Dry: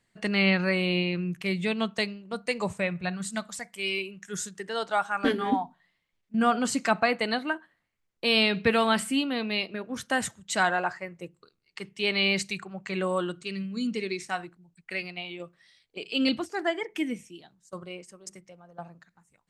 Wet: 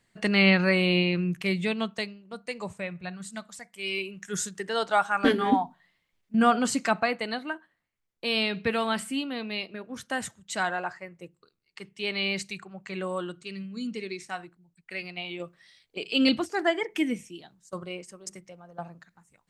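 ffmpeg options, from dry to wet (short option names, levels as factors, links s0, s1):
-af "volume=8.91,afade=t=out:st=1.32:d=0.82:silence=0.354813,afade=t=in:st=3.73:d=0.48:silence=0.354813,afade=t=out:st=6.35:d=0.89:silence=0.446684,afade=t=in:st=14.92:d=0.46:silence=0.446684"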